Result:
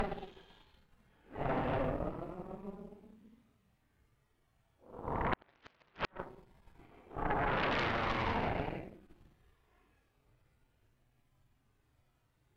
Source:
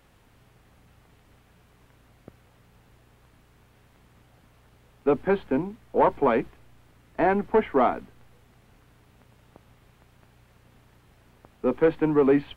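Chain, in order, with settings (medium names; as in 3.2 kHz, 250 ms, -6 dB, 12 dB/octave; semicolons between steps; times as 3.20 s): Paulstretch 8.2×, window 0.05 s, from 5.34 s; Chebyshev shaper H 3 -7 dB, 8 -16 dB, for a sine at -6 dBFS; inverted gate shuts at -9 dBFS, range -40 dB; trim -8 dB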